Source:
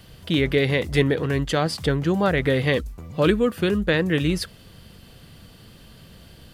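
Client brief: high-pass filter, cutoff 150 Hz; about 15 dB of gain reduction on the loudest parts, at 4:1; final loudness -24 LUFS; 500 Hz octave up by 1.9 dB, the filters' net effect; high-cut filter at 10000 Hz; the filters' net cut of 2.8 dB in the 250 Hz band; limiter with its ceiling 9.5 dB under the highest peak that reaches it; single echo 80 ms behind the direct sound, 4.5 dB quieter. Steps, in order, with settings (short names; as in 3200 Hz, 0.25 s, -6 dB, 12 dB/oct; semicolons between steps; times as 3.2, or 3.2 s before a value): HPF 150 Hz; LPF 10000 Hz; bell 250 Hz -4 dB; bell 500 Hz +3.5 dB; compressor 4:1, threshold -33 dBFS; limiter -28.5 dBFS; echo 80 ms -4.5 dB; gain +15 dB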